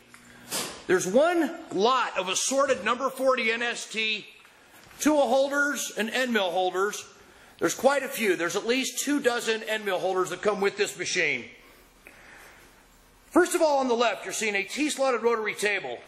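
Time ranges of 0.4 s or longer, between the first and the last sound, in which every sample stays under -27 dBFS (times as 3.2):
4.17–5.01
6.99–7.62
11.37–13.36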